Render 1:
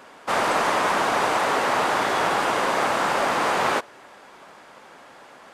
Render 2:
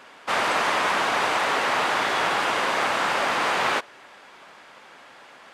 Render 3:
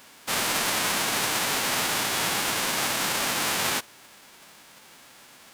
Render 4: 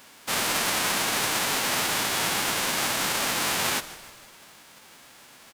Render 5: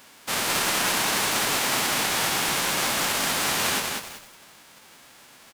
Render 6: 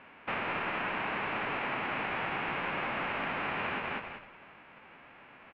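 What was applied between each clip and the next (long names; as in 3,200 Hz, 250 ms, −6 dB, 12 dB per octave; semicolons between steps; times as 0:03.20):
parametric band 2,800 Hz +7.5 dB 2.3 octaves; level −4.5 dB
spectral envelope flattened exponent 0.3; level −3 dB
echo with shifted repeats 155 ms, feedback 53%, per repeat −81 Hz, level −16.5 dB
feedback echo at a low word length 194 ms, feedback 35%, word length 7 bits, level −3 dB
elliptic low-pass filter 2,600 Hz, stop band 80 dB; downward compressor, threshold −31 dBFS, peak gain reduction 8 dB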